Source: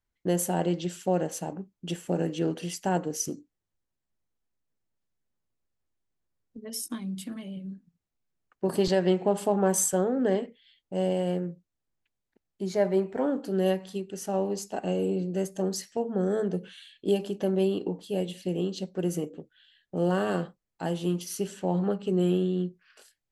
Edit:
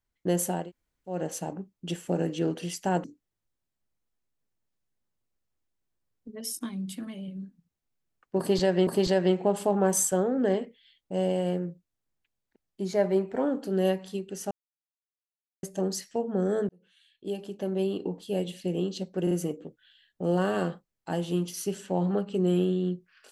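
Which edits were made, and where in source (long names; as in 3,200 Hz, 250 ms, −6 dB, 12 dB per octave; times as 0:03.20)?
0:00.60–0:01.16: fill with room tone, crossfade 0.24 s
0:03.04–0:03.33: remove
0:08.68–0:09.16: repeat, 2 plays
0:14.32–0:15.44: silence
0:16.50–0:18.09: fade in
0:19.04: stutter 0.04 s, 3 plays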